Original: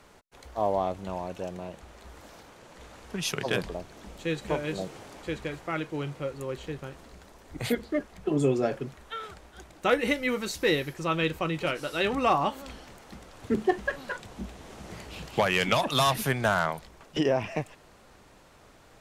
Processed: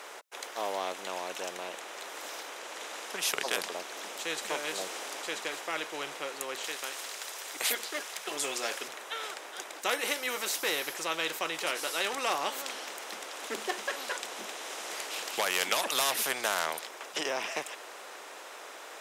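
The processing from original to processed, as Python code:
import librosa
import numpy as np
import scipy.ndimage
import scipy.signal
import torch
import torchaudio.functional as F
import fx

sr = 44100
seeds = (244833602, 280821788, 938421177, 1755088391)

y = fx.tilt_shelf(x, sr, db=-8.0, hz=1200.0, at=(6.64, 8.88))
y = fx.peak_eq(y, sr, hz=110.0, db=-14.5, octaves=1.7, at=(14.55, 15.26))
y = scipy.signal.sosfilt(scipy.signal.butter(4, 440.0, 'highpass', fs=sr, output='sos'), y)
y = fx.notch(y, sr, hz=4400.0, q=15.0)
y = fx.spectral_comp(y, sr, ratio=2.0)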